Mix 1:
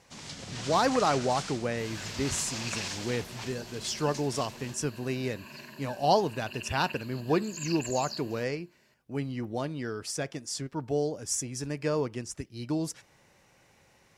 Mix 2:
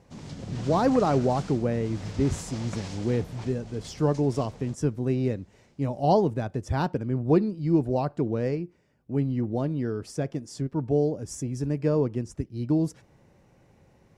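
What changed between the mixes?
second sound: muted
master: add tilt shelving filter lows +9 dB, about 820 Hz

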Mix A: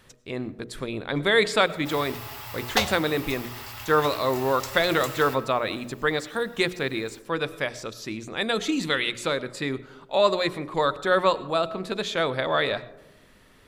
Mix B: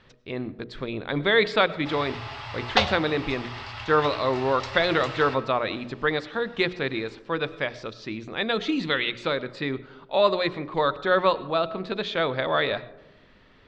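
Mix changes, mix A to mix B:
background +3.5 dB
master: add low-pass filter 4,500 Hz 24 dB per octave

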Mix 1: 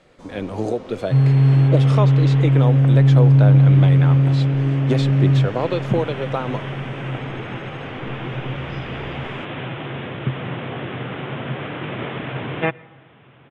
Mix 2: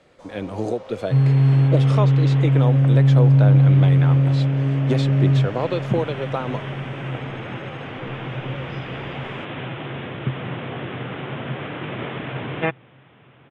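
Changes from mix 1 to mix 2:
first sound: add low shelf with overshoot 420 Hz −7.5 dB, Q 3
reverb: off

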